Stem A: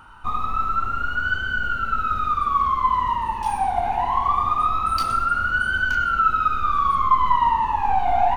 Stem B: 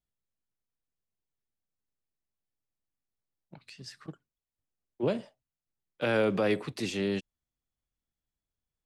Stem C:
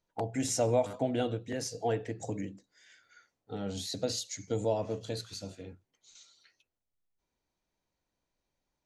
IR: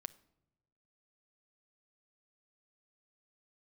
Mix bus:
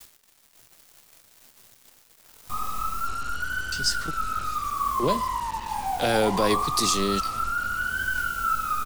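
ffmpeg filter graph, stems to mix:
-filter_complex "[0:a]flanger=delay=19:depth=4.9:speed=2.2,adelay=2250,volume=-9.5dB[link_01];[1:a]acompressor=mode=upward:threshold=-33dB:ratio=2.5,aexciter=amount=5.7:drive=5.1:freq=3800,volume=-2.5dB,asplit=3[link_02][link_03][link_04];[link_02]atrim=end=3.07,asetpts=PTS-STARTPTS,afade=type=out:start_time=3.066:duration=0.004:curve=hsin[link_05];[link_03]atrim=start=3.07:end=3.72,asetpts=PTS-STARTPTS,volume=0[link_06];[link_04]atrim=start=3.72,asetpts=PTS-STARTPTS,afade=type=in:duration=0.004:curve=hsin[link_07];[link_05][link_06][link_07]concat=n=3:v=0:a=1,asplit=2[link_08][link_09];[2:a]lowshelf=frequency=200:gain=7,aeval=exprs='0.0237*(abs(mod(val(0)/0.0237+3,4)-2)-1)':channel_layout=same,adelay=350,volume=-14dB[link_10];[link_09]apad=whole_len=405866[link_11];[link_10][link_11]sidechaincompress=threshold=-56dB:ratio=3:attack=33:release=348[link_12];[link_01][link_08][link_12]amix=inputs=3:normalize=0,agate=range=-33dB:threshold=-46dB:ratio=3:detection=peak,acontrast=46,acrusher=bits=5:mix=0:aa=0.5"

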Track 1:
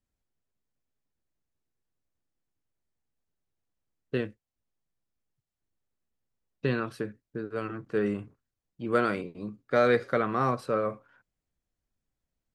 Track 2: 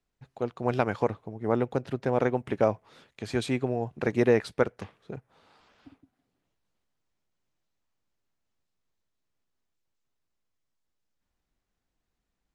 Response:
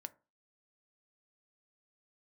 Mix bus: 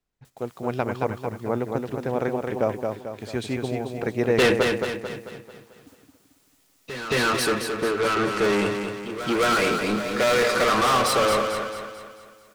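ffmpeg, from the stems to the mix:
-filter_complex "[0:a]highshelf=frequency=5000:gain=11,bandreject=frequency=1600:width=15,asplit=2[link_01][link_02];[link_02]highpass=frequency=720:poles=1,volume=34dB,asoftclip=type=tanh:threshold=-11.5dB[link_03];[link_01][link_03]amix=inputs=2:normalize=0,lowpass=frequency=7300:poles=1,volume=-6dB,adelay=250,volume=1.5dB,asplit=2[link_04][link_05];[link_05]volume=-4.5dB[link_06];[1:a]volume=-0.5dB,asplit=3[link_07][link_08][link_09];[link_08]volume=-4.5dB[link_10];[link_09]apad=whole_len=564465[link_11];[link_04][link_11]sidechaingate=range=-16dB:threshold=-52dB:ratio=16:detection=peak[link_12];[link_06][link_10]amix=inputs=2:normalize=0,aecho=0:1:221|442|663|884|1105|1326|1547:1|0.47|0.221|0.104|0.0488|0.0229|0.0108[link_13];[link_12][link_07][link_13]amix=inputs=3:normalize=0"

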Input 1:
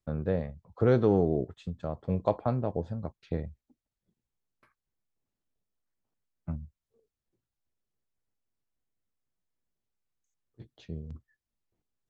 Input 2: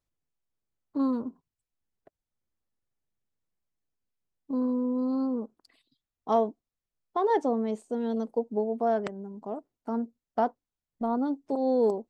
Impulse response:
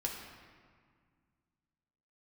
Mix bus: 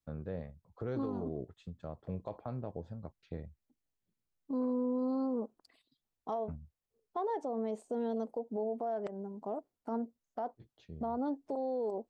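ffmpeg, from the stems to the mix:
-filter_complex "[0:a]volume=-9dB[link_01];[1:a]adynamicequalizer=threshold=0.0112:dfrequency=650:dqfactor=0.99:tfrequency=650:tqfactor=0.99:attack=5:release=100:ratio=0.375:range=4:mode=boostabove:tftype=bell,acompressor=threshold=-25dB:ratio=2.5,volume=-4dB[link_02];[link_01][link_02]amix=inputs=2:normalize=0,alimiter=level_in=4dB:limit=-24dB:level=0:latency=1:release=67,volume=-4dB"

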